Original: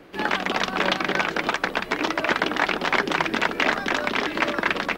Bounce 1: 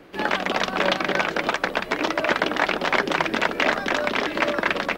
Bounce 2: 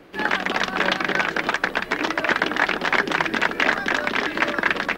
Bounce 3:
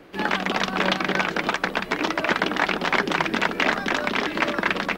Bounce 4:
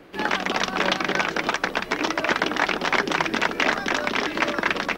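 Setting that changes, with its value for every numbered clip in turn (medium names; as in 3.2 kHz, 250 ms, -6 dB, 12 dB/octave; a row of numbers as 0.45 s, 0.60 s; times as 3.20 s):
dynamic bell, frequency: 580 Hz, 1.7 kHz, 190 Hz, 5.7 kHz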